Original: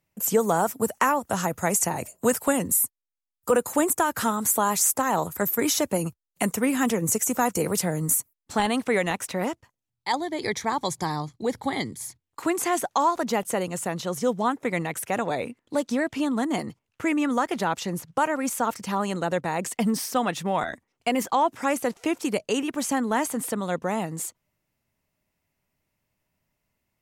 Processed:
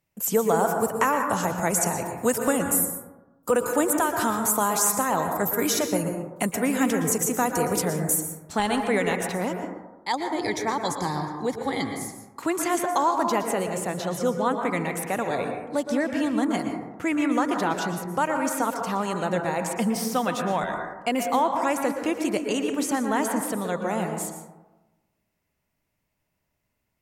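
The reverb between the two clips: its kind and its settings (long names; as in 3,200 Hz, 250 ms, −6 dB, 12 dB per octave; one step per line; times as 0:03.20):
dense smooth reverb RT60 1.1 s, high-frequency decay 0.25×, pre-delay 105 ms, DRR 4 dB
level −1 dB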